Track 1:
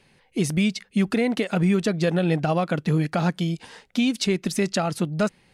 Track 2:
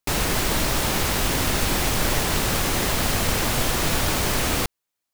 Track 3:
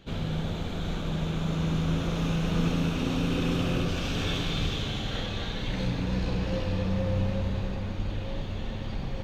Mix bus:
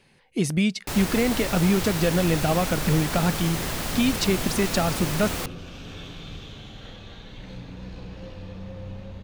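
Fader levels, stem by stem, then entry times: −0.5, −7.0, −10.0 decibels; 0.00, 0.80, 1.70 seconds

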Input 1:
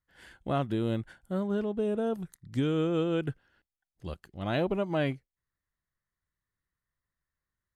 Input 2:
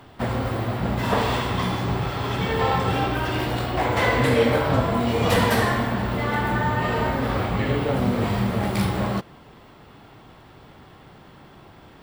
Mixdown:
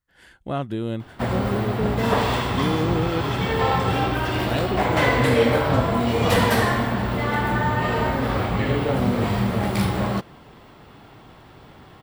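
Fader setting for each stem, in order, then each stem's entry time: +2.5, +1.0 decibels; 0.00, 1.00 seconds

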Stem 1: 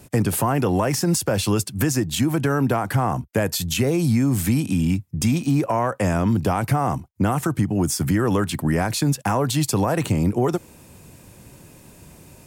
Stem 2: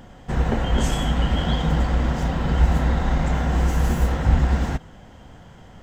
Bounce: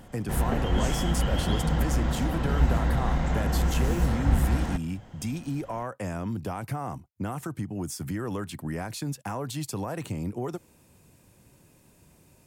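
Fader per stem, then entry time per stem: −12.0, −5.0 decibels; 0.00, 0.00 seconds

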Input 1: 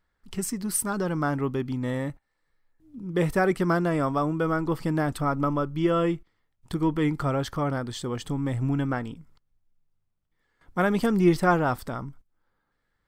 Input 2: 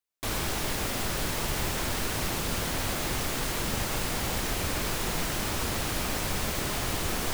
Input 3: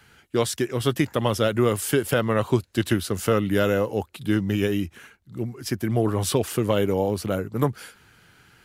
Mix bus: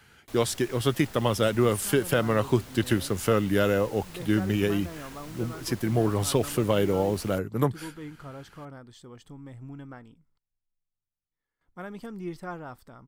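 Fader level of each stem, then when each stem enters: −16.0, −16.5, −2.0 decibels; 1.00, 0.05, 0.00 seconds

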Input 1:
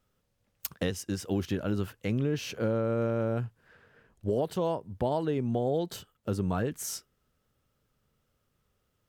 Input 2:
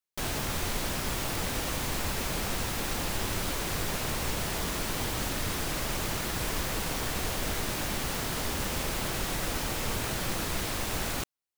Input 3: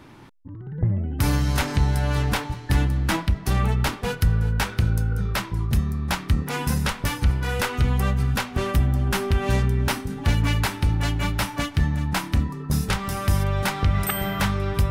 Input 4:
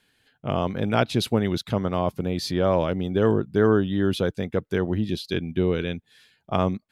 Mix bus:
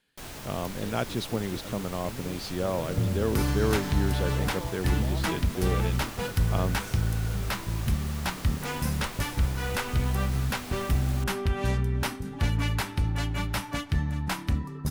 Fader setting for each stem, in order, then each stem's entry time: −12.5, −9.0, −5.5, −8.0 decibels; 0.00, 0.00, 2.15, 0.00 seconds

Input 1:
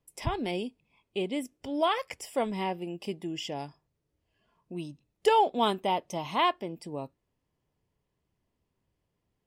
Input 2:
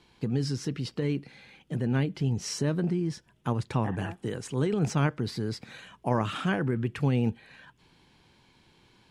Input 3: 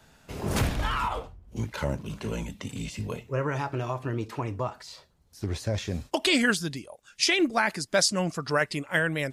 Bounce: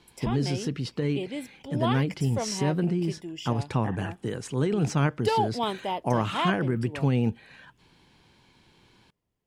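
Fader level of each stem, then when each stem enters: −2.5 dB, +1.5 dB, muted; 0.00 s, 0.00 s, muted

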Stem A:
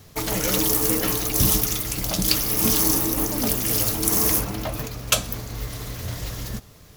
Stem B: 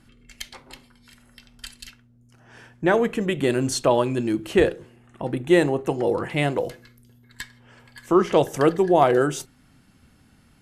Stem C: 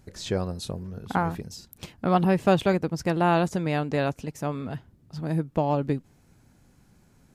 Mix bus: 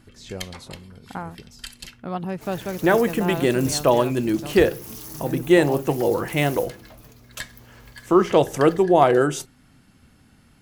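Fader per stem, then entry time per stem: −18.5, +1.5, −7.5 decibels; 2.25, 0.00, 0.00 seconds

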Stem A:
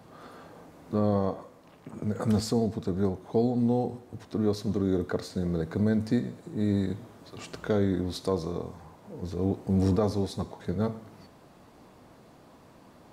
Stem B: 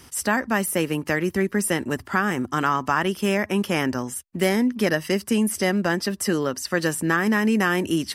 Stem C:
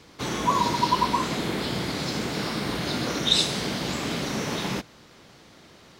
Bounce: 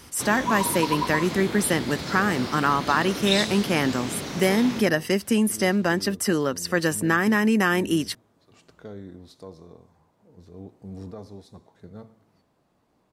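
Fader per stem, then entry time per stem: −14.0, 0.0, −4.0 decibels; 1.15, 0.00, 0.00 seconds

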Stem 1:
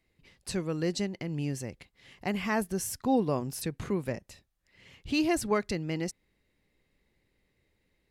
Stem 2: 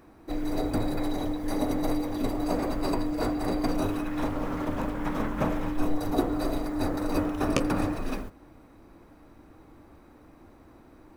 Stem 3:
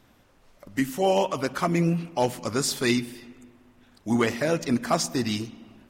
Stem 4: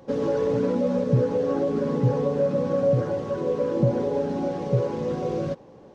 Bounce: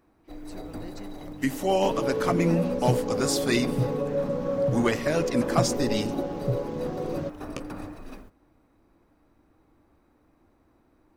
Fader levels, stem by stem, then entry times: −14.5, −10.5, −1.5, −4.5 decibels; 0.00, 0.00, 0.65, 1.75 seconds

